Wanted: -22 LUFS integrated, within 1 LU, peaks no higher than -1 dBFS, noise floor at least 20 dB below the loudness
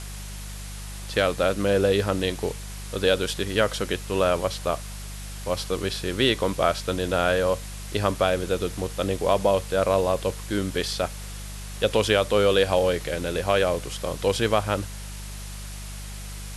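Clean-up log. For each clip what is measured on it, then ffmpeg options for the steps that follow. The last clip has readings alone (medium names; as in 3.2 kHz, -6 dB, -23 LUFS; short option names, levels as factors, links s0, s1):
hum 50 Hz; highest harmonic 200 Hz; hum level -34 dBFS; noise floor -36 dBFS; noise floor target -45 dBFS; loudness -24.5 LUFS; peak level -7.0 dBFS; loudness target -22.0 LUFS
-> -af "bandreject=f=50:t=h:w=4,bandreject=f=100:t=h:w=4,bandreject=f=150:t=h:w=4,bandreject=f=200:t=h:w=4"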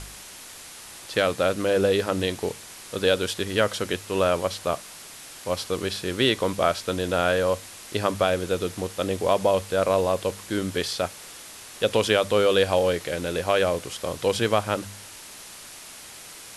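hum not found; noise floor -43 dBFS; noise floor target -45 dBFS
-> -af "afftdn=nr=6:nf=-43"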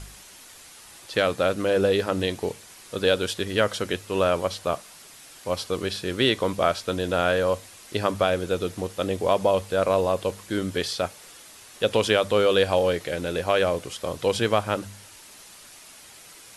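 noise floor -47 dBFS; loudness -24.5 LUFS; peak level -7.0 dBFS; loudness target -22.0 LUFS
-> -af "volume=1.33"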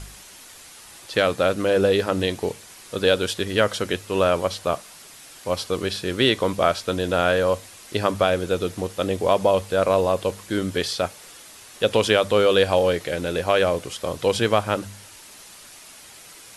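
loudness -22.0 LUFS; peak level -4.5 dBFS; noise floor -45 dBFS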